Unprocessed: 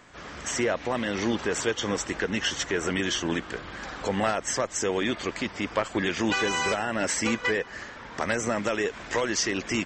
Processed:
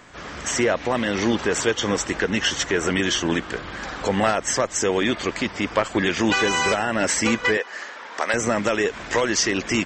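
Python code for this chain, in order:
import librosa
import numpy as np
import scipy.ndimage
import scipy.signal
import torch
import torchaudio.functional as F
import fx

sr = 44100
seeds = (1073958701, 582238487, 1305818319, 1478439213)

y = fx.highpass(x, sr, hz=480.0, slope=12, at=(7.57, 8.34))
y = y * 10.0 ** (5.5 / 20.0)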